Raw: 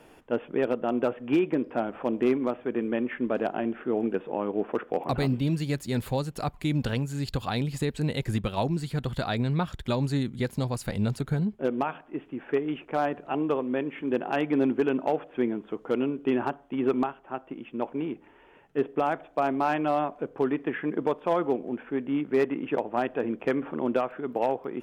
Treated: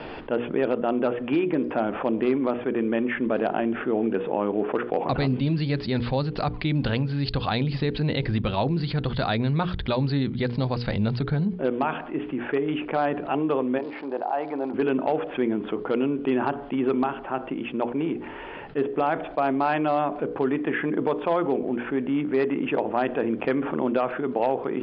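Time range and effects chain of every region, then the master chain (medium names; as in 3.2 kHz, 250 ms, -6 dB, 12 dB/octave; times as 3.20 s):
13.77–14.73 s: band-pass filter 780 Hz, Q 2.5 + crackle 170 per s -49 dBFS
whole clip: steep low-pass 4.9 kHz 96 dB/octave; hum notches 60/120/180/240/300/360/420/480 Hz; level flattener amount 50%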